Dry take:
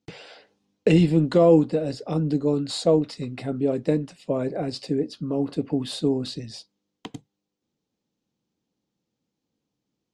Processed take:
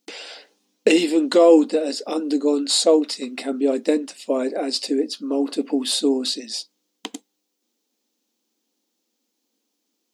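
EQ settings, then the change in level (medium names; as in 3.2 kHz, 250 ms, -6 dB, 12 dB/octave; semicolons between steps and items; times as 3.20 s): brick-wall FIR high-pass 210 Hz; treble shelf 2.8 kHz +8.5 dB; treble shelf 7.1 kHz +6 dB; +3.5 dB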